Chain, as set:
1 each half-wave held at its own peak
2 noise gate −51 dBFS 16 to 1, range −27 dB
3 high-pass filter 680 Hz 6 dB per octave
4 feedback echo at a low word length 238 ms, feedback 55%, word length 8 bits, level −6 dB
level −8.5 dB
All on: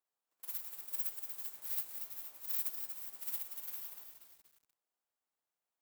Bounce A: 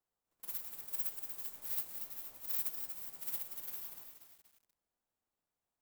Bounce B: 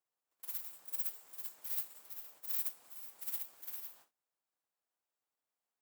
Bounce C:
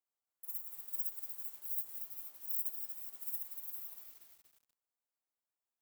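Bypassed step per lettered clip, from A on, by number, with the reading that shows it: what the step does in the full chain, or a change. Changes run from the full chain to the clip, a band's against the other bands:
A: 3, 1 kHz band +1.5 dB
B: 4, change in integrated loudness −1.0 LU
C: 1, distortion level −12 dB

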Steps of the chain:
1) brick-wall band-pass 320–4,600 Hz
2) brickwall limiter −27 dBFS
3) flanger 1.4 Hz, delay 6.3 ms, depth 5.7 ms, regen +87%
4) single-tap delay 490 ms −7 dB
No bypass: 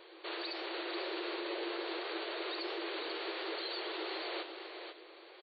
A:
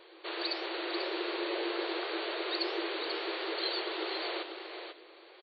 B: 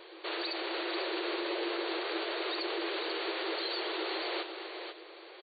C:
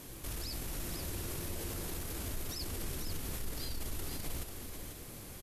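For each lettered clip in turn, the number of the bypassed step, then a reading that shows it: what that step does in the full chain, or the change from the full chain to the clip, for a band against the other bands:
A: 2, average gain reduction 3.0 dB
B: 3, change in integrated loudness +4.5 LU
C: 1, 250 Hz band +6.0 dB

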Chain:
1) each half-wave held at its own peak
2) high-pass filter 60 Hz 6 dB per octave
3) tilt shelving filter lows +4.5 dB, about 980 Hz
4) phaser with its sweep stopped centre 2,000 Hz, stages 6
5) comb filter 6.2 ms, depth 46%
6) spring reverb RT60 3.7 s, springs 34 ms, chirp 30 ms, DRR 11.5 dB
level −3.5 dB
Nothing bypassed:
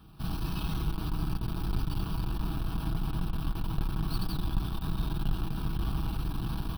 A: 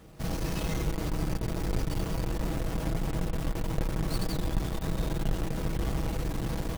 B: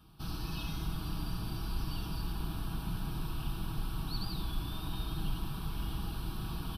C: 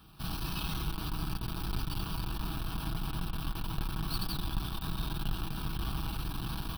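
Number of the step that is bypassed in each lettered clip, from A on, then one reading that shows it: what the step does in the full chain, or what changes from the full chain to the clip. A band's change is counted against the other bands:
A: 4, 500 Hz band +8.5 dB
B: 1, distortion level −7 dB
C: 3, 8 kHz band +6.0 dB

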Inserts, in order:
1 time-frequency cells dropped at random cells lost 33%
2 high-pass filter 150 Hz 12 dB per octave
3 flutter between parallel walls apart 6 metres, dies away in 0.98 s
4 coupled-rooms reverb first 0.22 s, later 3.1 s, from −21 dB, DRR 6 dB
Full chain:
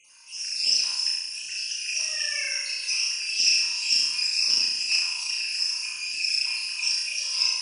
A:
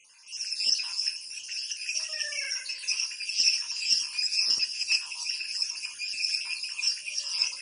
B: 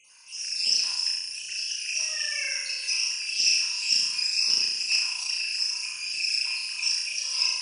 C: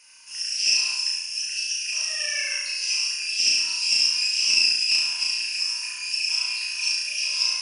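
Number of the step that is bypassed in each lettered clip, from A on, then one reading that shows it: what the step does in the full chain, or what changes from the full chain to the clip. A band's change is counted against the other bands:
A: 3, echo-to-direct ratio 3.5 dB to −6.0 dB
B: 4, change in integrated loudness −1.0 LU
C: 1, change in integrated loudness +2.0 LU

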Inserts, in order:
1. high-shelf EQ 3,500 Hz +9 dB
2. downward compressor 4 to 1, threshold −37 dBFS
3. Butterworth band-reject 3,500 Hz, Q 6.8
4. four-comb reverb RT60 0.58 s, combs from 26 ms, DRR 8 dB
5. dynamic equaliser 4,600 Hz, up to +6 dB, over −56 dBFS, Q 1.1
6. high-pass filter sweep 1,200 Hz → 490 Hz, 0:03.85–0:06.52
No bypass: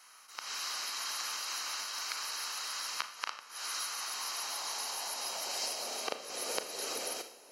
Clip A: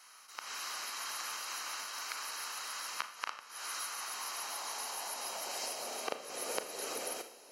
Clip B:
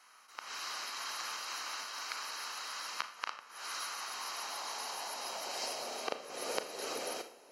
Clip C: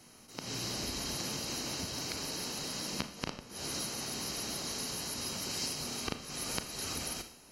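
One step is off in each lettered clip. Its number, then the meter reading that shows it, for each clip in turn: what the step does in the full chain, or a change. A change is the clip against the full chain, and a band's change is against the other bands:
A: 5, change in integrated loudness −3.0 LU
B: 1, 8 kHz band −6.5 dB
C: 6, 250 Hz band +15.5 dB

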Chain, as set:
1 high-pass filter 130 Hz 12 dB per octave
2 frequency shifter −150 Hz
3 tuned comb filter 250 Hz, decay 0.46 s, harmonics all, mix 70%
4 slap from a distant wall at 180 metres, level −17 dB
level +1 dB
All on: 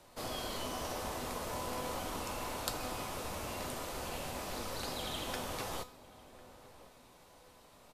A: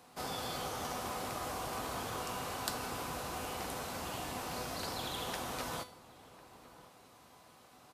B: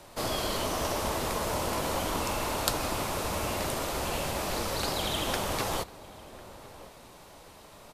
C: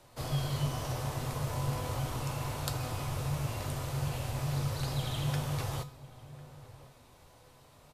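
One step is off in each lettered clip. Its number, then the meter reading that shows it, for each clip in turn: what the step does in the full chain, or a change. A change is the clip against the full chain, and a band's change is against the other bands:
2, 1 kHz band +1.5 dB
3, change in integrated loudness +9.0 LU
1, 125 Hz band +17.0 dB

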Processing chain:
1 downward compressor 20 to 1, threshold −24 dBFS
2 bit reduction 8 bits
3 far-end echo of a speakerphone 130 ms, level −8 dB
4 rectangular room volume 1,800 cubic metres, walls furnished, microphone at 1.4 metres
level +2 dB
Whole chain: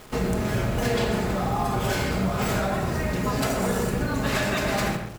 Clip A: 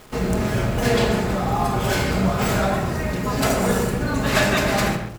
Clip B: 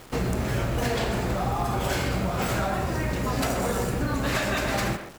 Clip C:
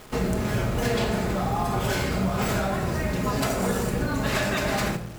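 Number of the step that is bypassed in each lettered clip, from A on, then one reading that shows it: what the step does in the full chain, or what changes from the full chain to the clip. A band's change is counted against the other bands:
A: 1, average gain reduction 3.5 dB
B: 4, echo-to-direct ratio −4.0 dB to −10.0 dB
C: 3, echo-to-direct ratio −4.0 dB to −6.0 dB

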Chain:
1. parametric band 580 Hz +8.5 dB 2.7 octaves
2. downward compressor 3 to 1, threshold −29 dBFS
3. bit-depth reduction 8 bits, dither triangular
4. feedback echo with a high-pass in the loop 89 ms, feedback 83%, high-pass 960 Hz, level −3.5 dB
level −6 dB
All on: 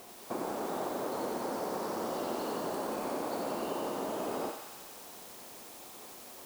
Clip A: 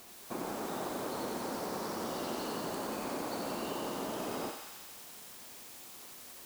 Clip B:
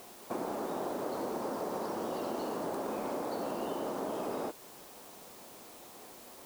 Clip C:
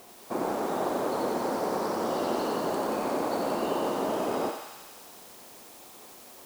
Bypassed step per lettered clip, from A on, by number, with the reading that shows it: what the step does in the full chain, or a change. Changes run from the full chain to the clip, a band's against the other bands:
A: 1, 500 Hz band −4.5 dB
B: 4, echo-to-direct ratio −2.0 dB to none audible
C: 2, average gain reduction 4.5 dB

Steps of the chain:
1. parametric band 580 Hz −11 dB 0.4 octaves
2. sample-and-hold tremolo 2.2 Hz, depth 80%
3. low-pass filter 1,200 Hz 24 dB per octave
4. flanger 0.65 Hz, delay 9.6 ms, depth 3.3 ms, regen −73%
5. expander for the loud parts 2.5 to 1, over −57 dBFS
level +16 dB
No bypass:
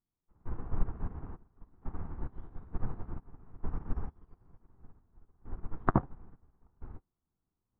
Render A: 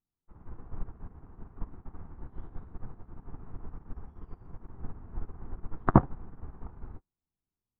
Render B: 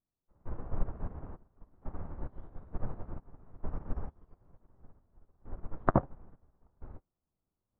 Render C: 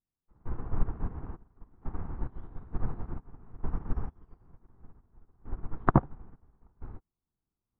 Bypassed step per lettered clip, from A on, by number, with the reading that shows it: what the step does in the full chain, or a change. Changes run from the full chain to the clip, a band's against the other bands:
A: 2, change in momentary loudness spread +1 LU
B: 1, 500 Hz band +4.5 dB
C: 4, change in momentary loudness spread +2 LU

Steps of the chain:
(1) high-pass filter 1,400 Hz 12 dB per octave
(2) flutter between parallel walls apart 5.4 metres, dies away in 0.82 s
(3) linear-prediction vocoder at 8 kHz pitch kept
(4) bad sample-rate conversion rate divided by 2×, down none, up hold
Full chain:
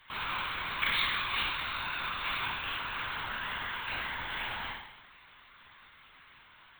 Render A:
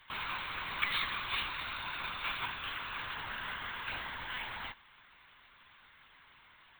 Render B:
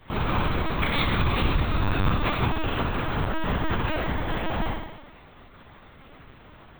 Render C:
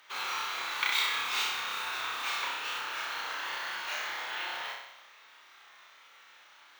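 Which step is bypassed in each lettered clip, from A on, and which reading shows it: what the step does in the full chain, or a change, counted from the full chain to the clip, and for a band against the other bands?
2, change in crest factor +4.0 dB
1, 4 kHz band −18.5 dB
3, 250 Hz band −8.0 dB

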